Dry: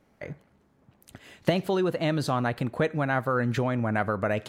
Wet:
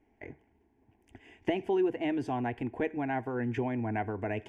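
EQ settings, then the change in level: LPF 3600 Hz 12 dB/oct; bell 1400 Hz -8 dB 1.2 oct; fixed phaser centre 830 Hz, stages 8; 0.0 dB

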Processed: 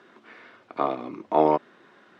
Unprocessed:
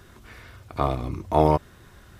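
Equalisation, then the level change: HPF 230 Hz 24 dB/oct; LPF 3000 Hz 12 dB/oct; 0.0 dB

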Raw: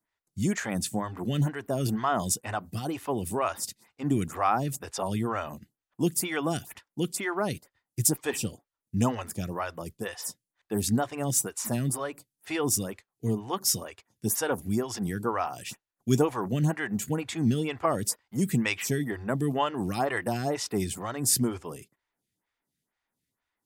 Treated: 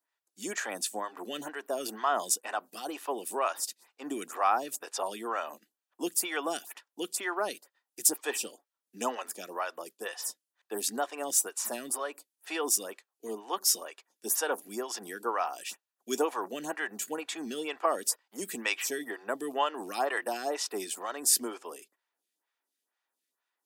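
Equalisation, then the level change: Bessel high-pass 480 Hz, order 6; notch 2100 Hz, Q 11; 0.0 dB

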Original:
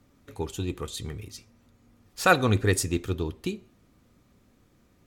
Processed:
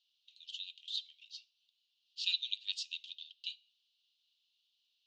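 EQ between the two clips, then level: rippled Chebyshev high-pass 2800 Hz, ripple 3 dB; LPF 4600 Hz 24 dB/oct; air absorption 110 m; +6.5 dB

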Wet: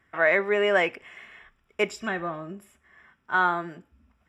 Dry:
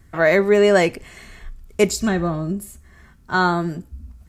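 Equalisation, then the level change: polynomial smoothing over 25 samples; HPF 1200 Hz 6 dB/oct; 0.0 dB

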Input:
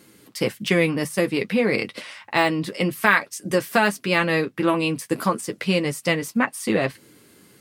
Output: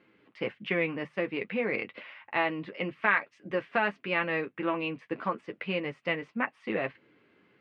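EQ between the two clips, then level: Chebyshev low-pass 2600 Hz, order 3; low shelf 260 Hz -10.5 dB; -6.5 dB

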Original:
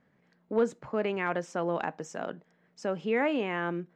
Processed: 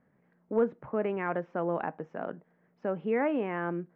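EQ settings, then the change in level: Bessel low-pass 1600 Hz, order 4; 0.0 dB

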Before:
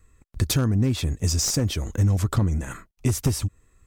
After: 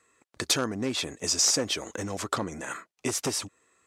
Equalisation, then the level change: HPF 420 Hz 12 dB/oct; LPF 8700 Hz 12 dB/oct; +3.0 dB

